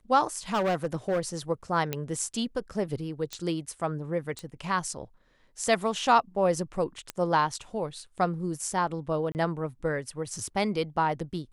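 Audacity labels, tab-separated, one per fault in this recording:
0.530000	1.200000	clipped -22.5 dBFS
1.930000	1.930000	pop -14 dBFS
3.330000	3.330000	pop -19 dBFS
4.390000	4.390000	pop -23 dBFS
7.100000	7.100000	pop -16 dBFS
9.320000	9.350000	dropout 29 ms

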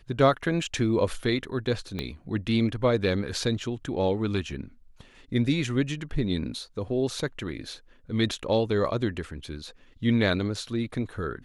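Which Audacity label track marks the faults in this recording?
1.990000	1.990000	pop -18 dBFS

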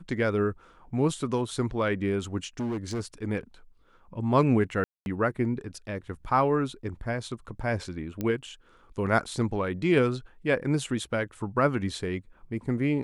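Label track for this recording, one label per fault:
2.600000	3.010000	clipped -27.5 dBFS
4.840000	5.060000	dropout 221 ms
8.210000	8.210000	pop -18 dBFS

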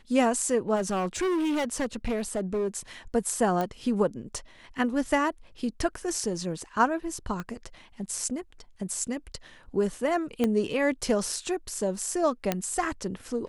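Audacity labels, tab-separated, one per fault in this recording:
0.750000	2.780000	clipped -24 dBFS
3.610000	3.610000	pop -16 dBFS
7.400000	7.400000	pop -21 dBFS
10.440000	10.440000	pop -13 dBFS
12.520000	12.520000	pop -10 dBFS

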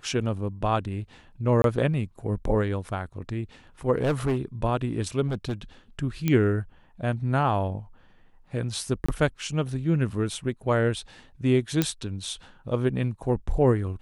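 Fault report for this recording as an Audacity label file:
1.620000	1.640000	dropout 22 ms
3.980000	4.370000	clipped -20 dBFS
5.270000	5.540000	clipped -24 dBFS
6.280000	6.280000	pop -11 dBFS
9.060000	9.090000	dropout 25 ms
11.820000	11.820000	pop -8 dBFS

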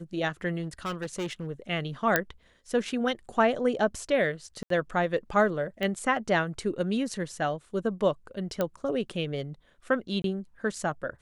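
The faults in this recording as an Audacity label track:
0.620000	1.480000	clipped -28.5 dBFS
2.160000	2.160000	pop -7 dBFS
4.630000	4.700000	dropout 73 ms
5.830000	5.830000	pop -18 dBFS
8.610000	8.610000	pop -14 dBFS
10.220000	10.240000	dropout 22 ms

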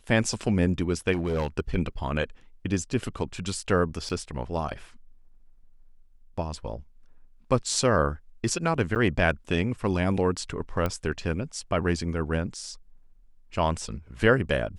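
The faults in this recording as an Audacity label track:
1.120000	1.480000	clipped -23 dBFS
4.090000	4.100000	dropout 7.6 ms
8.950000	8.960000	dropout 8.8 ms
10.860000	10.860000	pop -15 dBFS

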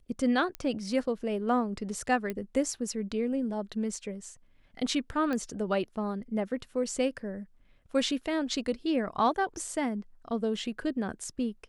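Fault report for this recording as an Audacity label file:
0.550000	0.550000	pop -20 dBFS
2.300000	2.300000	pop -20 dBFS
5.330000	5.330000	pop -20 dBFS

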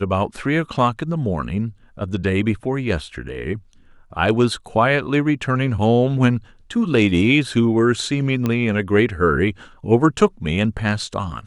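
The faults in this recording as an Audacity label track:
8.460000	8.460000	pop -9 dBFS

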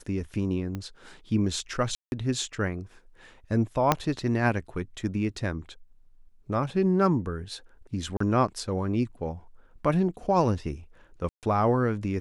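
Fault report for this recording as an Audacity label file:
0.750000	0.750000	pop -21 dBFS
1.950000	2.120000	dropout 171 ms
3.920000	3.920000	pop -6 dBFS
8.170000	8.200000	dropout 34 ms
11.290000	11.430000	dropout 138 ms

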